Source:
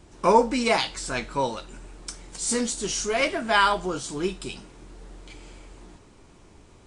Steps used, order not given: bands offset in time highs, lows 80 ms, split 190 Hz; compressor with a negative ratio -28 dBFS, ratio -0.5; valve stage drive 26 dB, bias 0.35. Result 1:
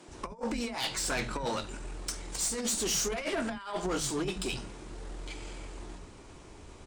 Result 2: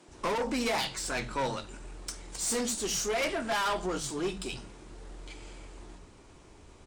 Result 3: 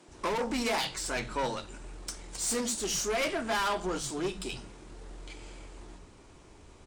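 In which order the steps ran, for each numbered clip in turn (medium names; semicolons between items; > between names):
compressor with a negative ratio > bands offset in time > valve stage; bands offset in time > valve stage > compressor with a negative ratio; valve stage > compressor with a negative ratio > bands offset in time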